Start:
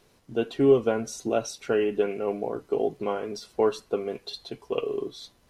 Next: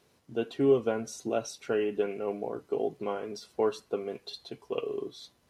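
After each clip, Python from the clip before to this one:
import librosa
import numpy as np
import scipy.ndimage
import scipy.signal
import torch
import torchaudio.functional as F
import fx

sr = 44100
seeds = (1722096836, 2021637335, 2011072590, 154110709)

y = scipy.signal.sosfilt(scipy.signal.butter(2, 67.0, 'highpass', fs=sr, output='sos'), x)
y = F.gain(torch.from_numpy(y), -4.5).numpy()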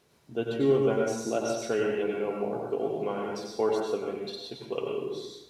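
y = fx.rev_plate(x, sr, seeds[0], rt60_s=0.82, hf_ratio=0.8, predelay_ms=80, drr_db=-1.0)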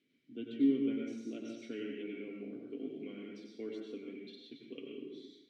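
y = fx.vowel_filter(x, sr, vowel='i')
y = F.gain(torch.from_numpy(y), 2.0).numpy()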